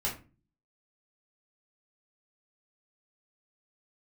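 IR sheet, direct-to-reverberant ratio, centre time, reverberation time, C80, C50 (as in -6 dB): -5.0 dB, 24 ms, 0.35 s, 15.0 dB, 9.0 dB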